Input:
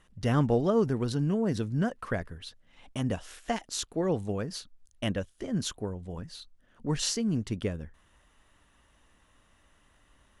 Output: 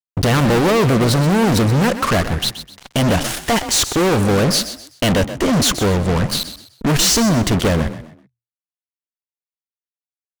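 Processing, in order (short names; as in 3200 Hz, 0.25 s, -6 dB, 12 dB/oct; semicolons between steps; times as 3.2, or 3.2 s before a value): fuzz box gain 45 dB, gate -47 dBFS; frequency-shifting echo 0.127 s, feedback 32%, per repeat +39 Hz, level -12 dB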